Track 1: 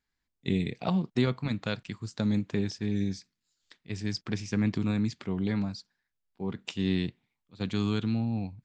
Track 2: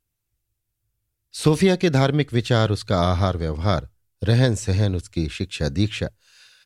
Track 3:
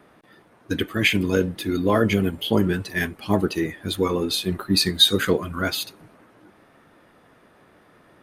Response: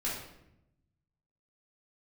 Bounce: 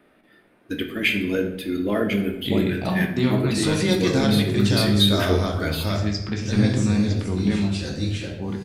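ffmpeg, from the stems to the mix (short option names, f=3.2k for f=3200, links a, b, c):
-filter_complex "[0:a]adelay=2000,volume=0.5dB,asplit=2[a][b];[b]volume=-3dB[c];[1:a]highshelf=f=3.8k:g=10.5,acrossover=split=9300[d][e];[e]acompressor=threshold=-49dB:ratio=4:attack=1:release=60[f];[d][f]amix=inputs=2:normalize=0,alimiter=limit=-6dB:level=0:latency=1:release=448,adelay=2200,volume=-6.5dB,asplit=2[g][h];[h]volume=-4.5dB[i];[2:a]equalizer=f=100:t=o:w=0.67:g=-9,equalizer=f=1k:t=o:w=0.67:g=-7,equalizer=f=2.5k:t=o:w=0.67:g=3,equalizer=f=6.3k:t=o:w=0.67:g=-7,volume=-6.5dB,asplit=3[j][k][l];[k]volume=-5.5dB[m];[l]apad=whole_len=390305[n];[g][n]sidechaingate=range=-33dB:threshold=-50dB:ratio=16:detection=peak[o];[a][o]amix=inputs=2:normalize=0,alimiter=limit=-18dB:level=0:latency=1,volume=0dB[p];[3:a]atrim=start_sample=2205[q];[c][i][m]amix=inputs=3:normalize=0[r];[r][q]afir=irnorm=-1:irlink=0[s];[j][p][s]amix=inputs=3:normalize=0"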